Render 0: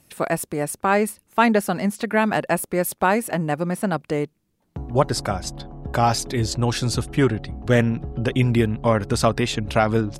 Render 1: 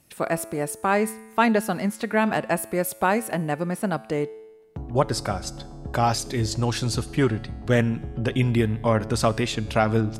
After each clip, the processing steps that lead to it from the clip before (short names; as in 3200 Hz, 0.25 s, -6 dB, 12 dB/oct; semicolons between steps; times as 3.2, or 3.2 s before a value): resonator 110 Hz, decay 1.2 s, harmonics all, mix 50%; gain +3 dB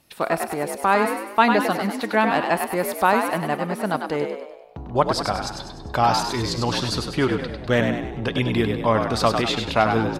ten-band EQ 125 Hz -4 dB, 1000 Hz +5 dB, 4000 Hz +7 dB, 8000 Hz -6 dB; on a send: frequency-shifting echo 99 ms, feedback 48%, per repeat +57 Hz, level -6 dB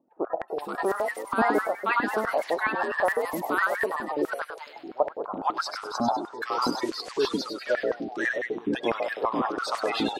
bin magnitudes rounded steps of 30 dB; bands offset in time lows, highs 0.48 s, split 930 Hz; stepped high-pass 12 Hz 260–1800 Hz; gain -7 dB